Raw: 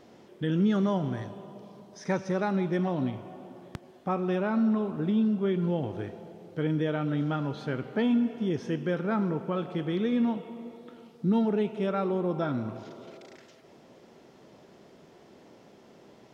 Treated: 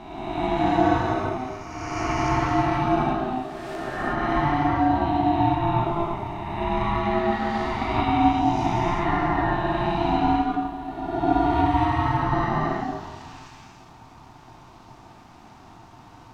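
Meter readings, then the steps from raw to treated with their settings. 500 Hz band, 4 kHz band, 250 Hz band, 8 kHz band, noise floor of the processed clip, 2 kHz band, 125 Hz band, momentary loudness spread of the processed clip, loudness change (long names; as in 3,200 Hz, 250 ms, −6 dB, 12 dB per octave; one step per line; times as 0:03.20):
+4.0 dB, +8.5 dB, +2.5 dB, can't be measured, −48 dBFS, +10.0 dB, +5.0 dB, 11 LU, +5.0 dB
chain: peak hold with a rise ahead of every peak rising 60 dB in 1.77 s
reverb whose tail is shaped and stops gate 410 ms flat, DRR −5 dB
ring modulation 510 Hz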